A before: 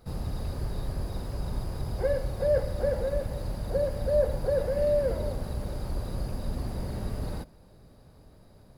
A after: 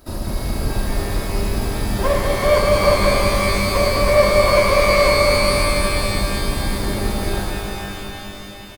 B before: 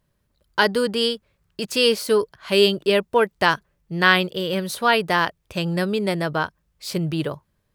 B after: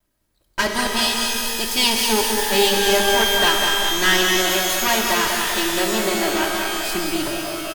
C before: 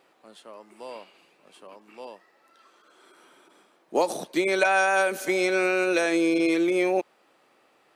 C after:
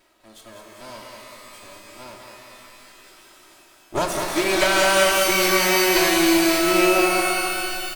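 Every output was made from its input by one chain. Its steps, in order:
lower of the sound and its delayed copy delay 3.1 ms
high-shelf EQ 4,600 Hz +7.5 dB
on a send: repeating echo 198 ms, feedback 56%, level −6 dB
on the sum: reverb with rising layers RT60 2.5 s, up +12 semitones, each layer −2 dB, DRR 3.5 dB
loudness normalisation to −18 LKFS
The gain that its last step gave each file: +9.0, −1.0, +1.5 decibels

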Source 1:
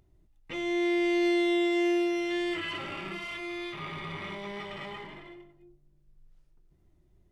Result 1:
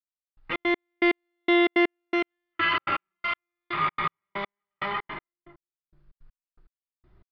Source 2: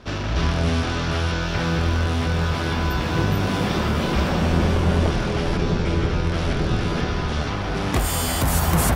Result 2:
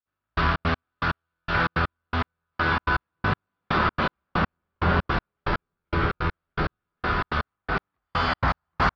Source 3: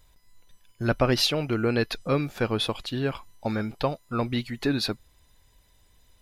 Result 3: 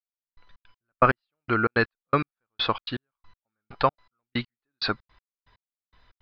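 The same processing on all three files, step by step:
elliptic low-pass filter 4,700 Hz, stop band 60 dB
parametric band 1,300 Hz +13 dB 1.2 octaves
gate pattern "....xx.x...x" 162 BPM −60 dB
loudness normalisation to −27 LKFS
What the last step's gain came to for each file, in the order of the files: +5.5, −3.5, 0.0 decibels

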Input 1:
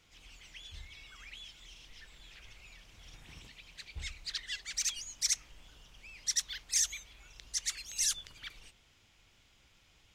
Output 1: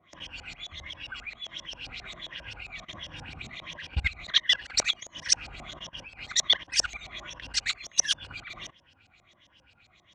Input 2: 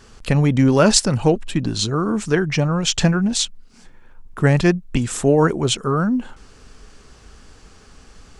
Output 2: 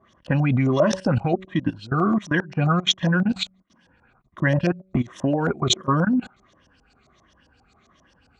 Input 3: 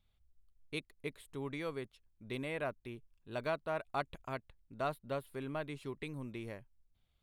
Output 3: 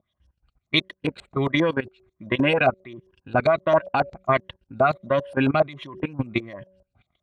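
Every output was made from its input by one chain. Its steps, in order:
rippled gain that drifts along the octave scale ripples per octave 1.2, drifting −1.4 Hz, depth 11 dB
high-pass filter 64 Hz 12 dB per octave
parametric band 4,900 Hz −8 dB 0.22 octaves
hum removal 188.2 Hz, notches 3
output level in coarse steps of 20 dB
notch comb filter 440 Hz
auto-filter low-pass saw up 7.5 Hz 620–6,100 Hz
normalise the peak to −6 dBFS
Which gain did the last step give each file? +18.0, +1.0, +21.0 decibels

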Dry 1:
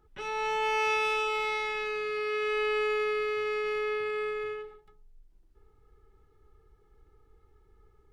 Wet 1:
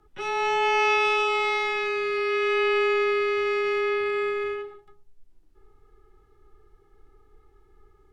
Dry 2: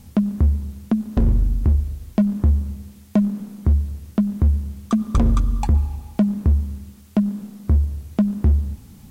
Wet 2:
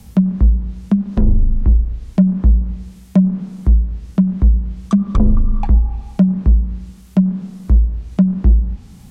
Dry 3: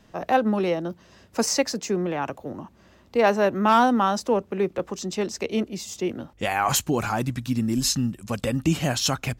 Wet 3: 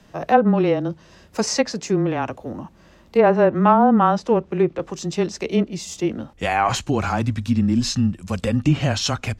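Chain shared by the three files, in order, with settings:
harmonic and percussive parts rebalanced harmonic +5 dB
frequency shifter −17 Hz
treble cut that deepens with the level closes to 710 Hz, closed at −8 dBFS
level +1 dB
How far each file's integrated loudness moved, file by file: +6.0, +4.5, +4.0 LU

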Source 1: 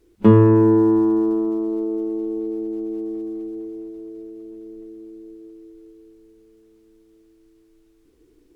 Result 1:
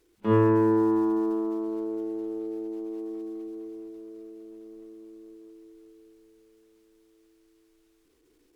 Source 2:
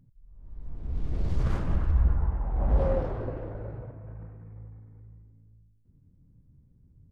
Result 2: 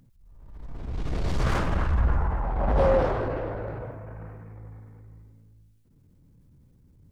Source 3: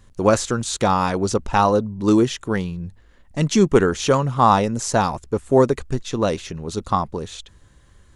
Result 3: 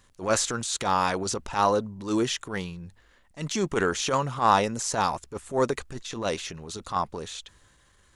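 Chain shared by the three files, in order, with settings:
low-shelf EQ 450 Hz −11.5 dB
transient designer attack −11 dB, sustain +2 dB
loudness normalisation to −27 LKFS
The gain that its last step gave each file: 0.0, +13.5, −0.5 decibels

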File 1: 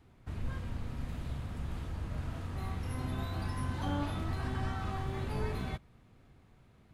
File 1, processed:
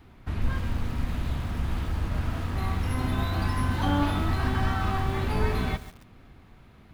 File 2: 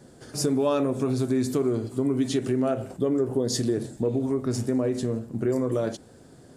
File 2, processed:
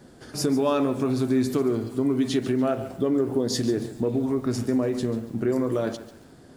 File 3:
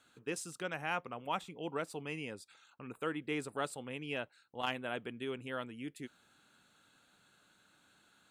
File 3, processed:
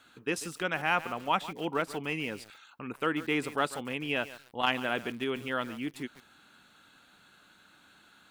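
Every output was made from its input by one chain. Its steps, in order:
octave-band graphic EQ 125/500/8,000 Hz −5/−4/−7 dB
feedback echo at a low word length 142 ms, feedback 35%, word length 8 bits, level −14 dB
normalise the peak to −12 dBFS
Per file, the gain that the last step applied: +11.5, +3.5, +9.5 decibels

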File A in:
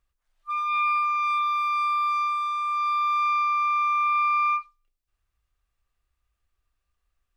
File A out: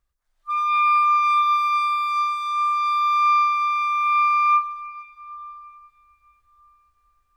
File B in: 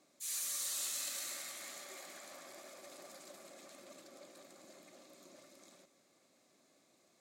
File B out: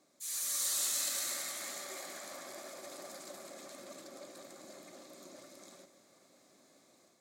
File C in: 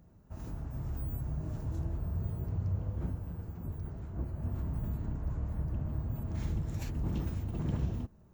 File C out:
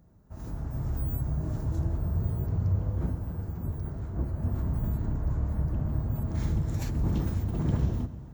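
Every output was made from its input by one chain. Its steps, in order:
parametric band 2,700 Hz −5 dB 0.48 octaves
dense smooth reverb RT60 4.6 s, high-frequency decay 0.7×, DRR 13.5 dB
automatic gain control gain up to 6 dB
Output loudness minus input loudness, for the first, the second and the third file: +4.5, +4.5, +6.0 LU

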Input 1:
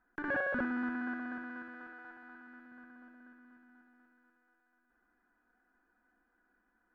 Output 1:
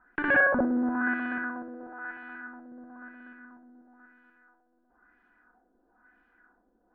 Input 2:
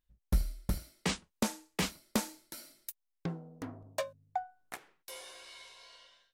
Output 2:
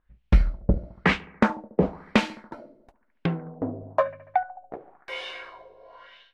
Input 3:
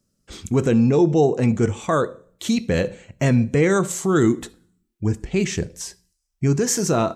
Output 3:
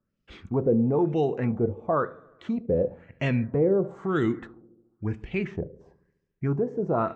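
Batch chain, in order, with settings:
bucket-brigade delay 71 ms, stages 1,024, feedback 67%, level −21.5 dB
auto-filter low-pass sine 1 Hz 500–2,900 Hz
loudness normalisation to −27 LKFS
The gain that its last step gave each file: +8.0, +11.0, −8.0 decibels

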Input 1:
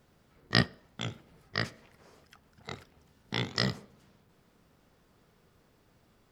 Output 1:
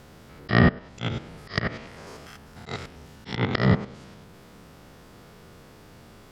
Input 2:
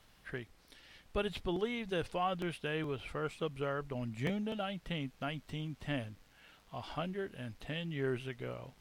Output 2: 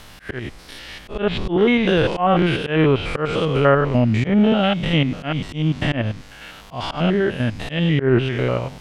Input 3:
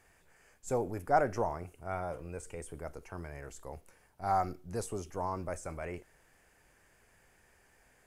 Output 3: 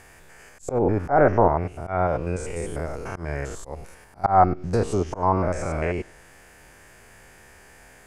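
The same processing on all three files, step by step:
spectrum averaged block by block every 100 ms
treble cut that deepens with the level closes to 1,900 Hz, closed at −31.5 dBFS
volume swells 141 ms
normalise the peak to −3 dBFS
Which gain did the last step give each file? +17.5, +23.5, +17.0 decibels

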